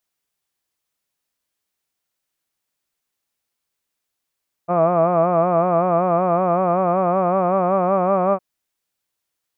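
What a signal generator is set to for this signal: formant-synthesis vowel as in hud, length 3.71 s, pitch 169 Hz, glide +2 st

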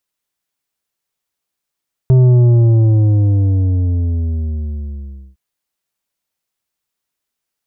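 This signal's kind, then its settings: sub drop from 130 Hz, over 3.26 s, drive 8 dB, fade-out 3.23 s, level -6.5 dB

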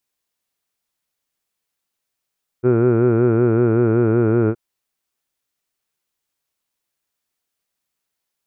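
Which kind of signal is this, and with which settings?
formant vowel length 1.92 s, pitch 120 Hz, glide -1 st, F1 390 Hz, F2 1.4 kHz, F3 2.4 kHz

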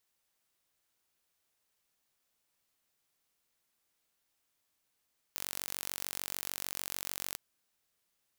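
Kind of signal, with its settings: pulse train 46.7 per s, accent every 0, -10.5 dBFS 2.01 s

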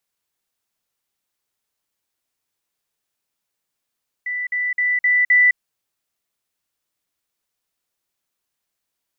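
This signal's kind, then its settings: level ladder 1.98 kHz -22 dBFS, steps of 3 dB, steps 5, 0.21 s 0.05 s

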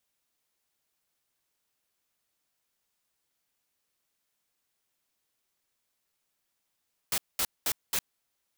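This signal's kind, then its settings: noise bursts white, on 0.06 s, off 0.21 s, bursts 4, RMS -28 dBFS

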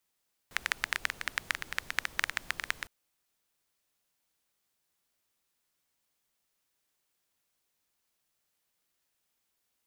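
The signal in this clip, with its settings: rain from filtered ticks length 2.36 s, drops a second 12, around 1.8 kHz, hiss -16 dB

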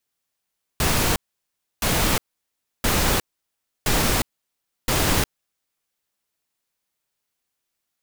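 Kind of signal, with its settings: noise bursts pink, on 0.36 s, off 0.66 s, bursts 5, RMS -20 dBFS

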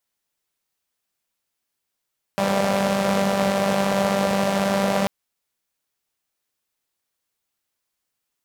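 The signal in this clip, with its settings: four-cylinder engine model, steady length 2.69 s, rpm 5900, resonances 200/550 Hz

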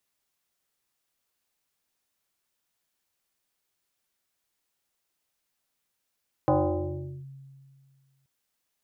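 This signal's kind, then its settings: FM tone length 1.78 s, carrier 136 Hz, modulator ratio 1.64, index 3.6, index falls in 0.77 s linear, decay 2.07 s, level -17.5 dB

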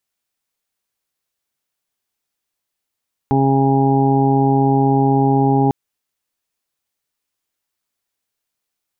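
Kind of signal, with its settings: steady additive tone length 2.40 s, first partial 136 Hz, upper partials 0.5/-3/-19.5/-14/-1/-17 dB, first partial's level -16.5 dB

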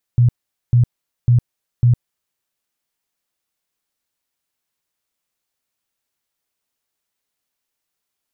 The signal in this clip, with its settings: tone bursts 121 Hz, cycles 13, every 0.55 s, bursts 4, -8.5 dBFS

